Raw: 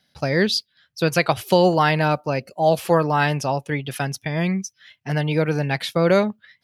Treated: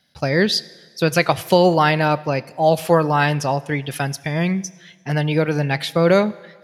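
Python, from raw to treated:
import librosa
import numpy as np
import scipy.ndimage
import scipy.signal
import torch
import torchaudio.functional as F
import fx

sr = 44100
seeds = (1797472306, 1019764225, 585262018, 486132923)

y = fx.rev_fdn(x, sr, rt60_s=1.5, lf_ratio=0.95, hf_ratio=0.95, size_ms=58.0, drr_db=17.5)
y = y * 10.0 ** (2.0 / 20.0)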